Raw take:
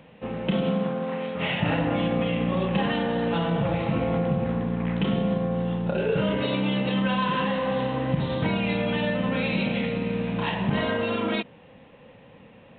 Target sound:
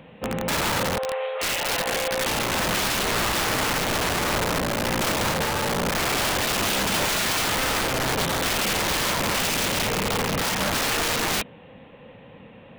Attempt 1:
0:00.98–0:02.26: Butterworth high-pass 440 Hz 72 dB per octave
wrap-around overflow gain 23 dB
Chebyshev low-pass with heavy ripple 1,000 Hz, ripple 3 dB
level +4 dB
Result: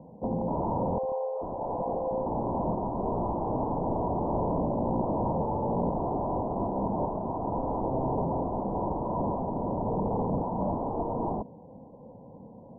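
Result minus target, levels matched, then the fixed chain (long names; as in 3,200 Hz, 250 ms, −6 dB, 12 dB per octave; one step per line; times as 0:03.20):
1,000 Hz band +3.5 dB
0:00.98–0:02.26: Butterworth high-pass 440 Hz 72 dB per octave
wrap-around overflow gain 23 dB
level +4 dB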